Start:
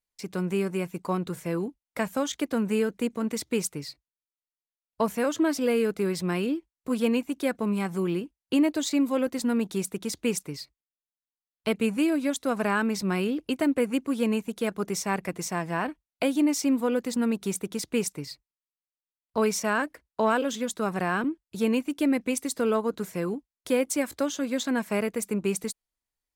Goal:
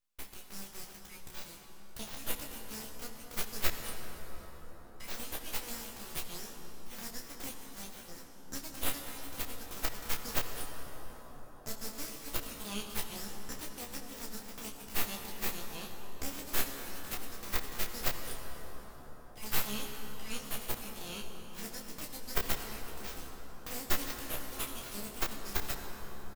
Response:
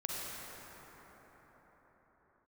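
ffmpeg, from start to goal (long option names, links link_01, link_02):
-filter_complex "[0:a]highpass=frequency=1100:width=0.5412,highpass=frequency=1100:width=1.3066,aderivative,aeval=exprs='abs(val(0))':channel_layout=same,aecho=1:1:14|29:0.562|0.531,asplit=2[link_01][link_02];[1:a]atrim=start_sample=2205,asetrate=32634,aresample=44100[link_03];[link_02][link_03]afir=irnorm=-1:irlink=0,volume=-5dB[link_04];[link_01][link_04]amix=inputs=2:normalize=0,volume=-1dB"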